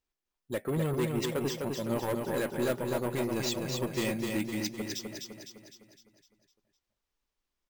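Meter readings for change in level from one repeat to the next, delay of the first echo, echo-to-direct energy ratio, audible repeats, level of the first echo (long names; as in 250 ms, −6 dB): −6.0 dB, 254 ms, −2.5 dB, 6, −4.0 dB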